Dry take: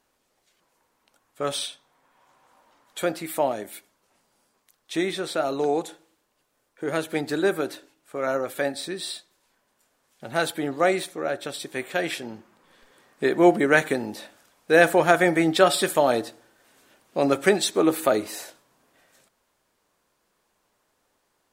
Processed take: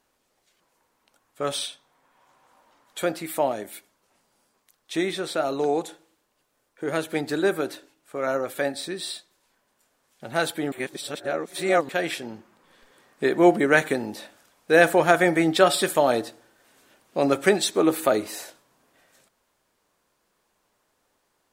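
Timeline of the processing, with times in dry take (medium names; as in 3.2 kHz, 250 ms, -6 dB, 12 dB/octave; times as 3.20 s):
10.72–11.89 s: reverse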